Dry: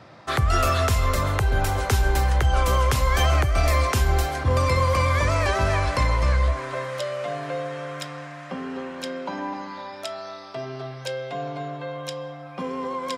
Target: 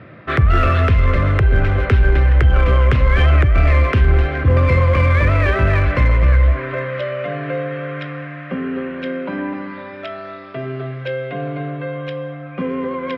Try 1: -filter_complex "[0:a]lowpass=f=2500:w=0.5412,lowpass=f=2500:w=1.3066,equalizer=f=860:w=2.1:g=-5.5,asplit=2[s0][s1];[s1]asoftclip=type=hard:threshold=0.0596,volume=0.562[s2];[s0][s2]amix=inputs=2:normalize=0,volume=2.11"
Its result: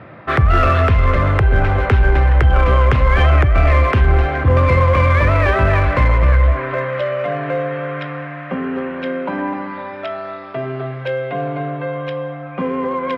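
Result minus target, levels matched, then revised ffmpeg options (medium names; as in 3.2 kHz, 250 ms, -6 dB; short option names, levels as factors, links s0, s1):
1 kHz band +4.5 dB
-filter_complex "[0:a]lowpass=f=2500:w=0.5412,lowpass=f=2500:w=1.3066,equalizer=f=860:w=2.1:g=-16.5,asplit=2[s0][s1];[s1]asoftclip=type=hard:threshold=0.0596,volume=0.562[s2];[s0][s2]amix=inputs=2:normalize=0,volume=2.11"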